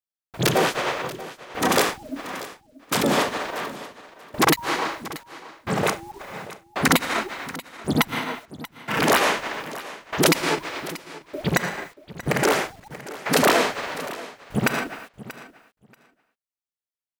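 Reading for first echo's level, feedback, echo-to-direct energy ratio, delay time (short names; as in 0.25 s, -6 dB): -16.5 dB, 16%, -16.5 dB, 0.634 s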